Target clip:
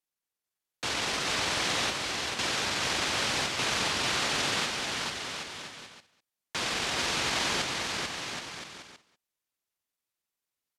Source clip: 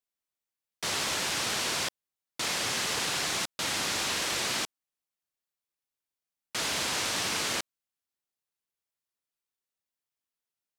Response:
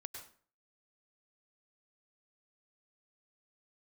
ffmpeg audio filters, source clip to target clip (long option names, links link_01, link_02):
-filter_complex "[0:a]asplit=2[link_01][link_02];[link_02]aecho=0:1:200:0.126[link_03];[link_01][link_03]amix=inputs=2:normalize=0,asetrate=33038,aresample=44100,atempo=1.33484,asplit=2[link_04][link_05];[link_05]aecho=0:1:440|770|1018|1203|1342:0.631|0.398|0.251|0.158|0.1[link_06];[link_04][link_06]amix=inputs=2:normalize=0"